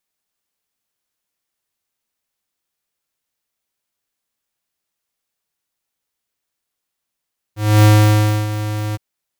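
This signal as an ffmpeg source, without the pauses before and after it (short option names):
-f lavfi -i "aevalsrc='0.398*(2*lt(mod(106*t,1),0.5)-1)':d=1.415:s=44100,afade=t=in:d=0.267,afade=t=out:st=0.267:d=0.642:silence=0.211,afade=t=out:st=1.39:d=0.025"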